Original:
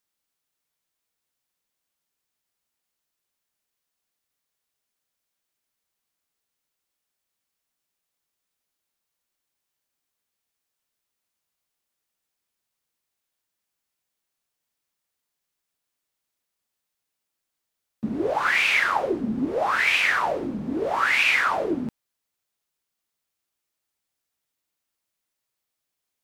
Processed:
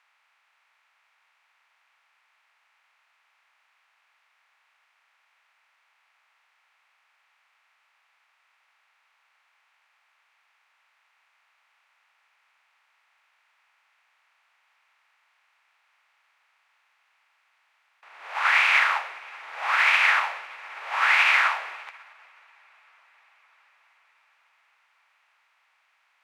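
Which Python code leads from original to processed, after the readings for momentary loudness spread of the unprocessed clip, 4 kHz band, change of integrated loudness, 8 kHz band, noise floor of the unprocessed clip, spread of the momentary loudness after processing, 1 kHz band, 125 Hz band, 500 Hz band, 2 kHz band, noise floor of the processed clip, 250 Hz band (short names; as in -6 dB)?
11 LU, -0.5 dB, +0.5 dB, -3.5 dB, -83 dBFS, 21 LU, -0.5 dB, under -40 dB, -16.0 dB, +1.0 dB, -69 dBFS, under -40 dB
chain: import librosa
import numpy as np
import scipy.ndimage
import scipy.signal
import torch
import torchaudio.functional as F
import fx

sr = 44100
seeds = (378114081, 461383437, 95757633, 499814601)

y = fx.bin_compress(x, sr, power=0.4)
y = scipy.signal.sosfilt(scipy.signal.cheby2(4, 70, 190.0, 'highpass', fs=sr, output='sos'), y)
y = fx.high_shelf(y, sr, hz=6300.0, db=-9.0)
y = fx.echo_diffused(y, sr, ms=591, feedback_pct=65, wet_db=-12.0)
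y = fx.upward_expand(y, sr, threshold_db=-31.0, expansion=2.5)
y = F.gain(torch.from_numpy(y), -1.5).numpy()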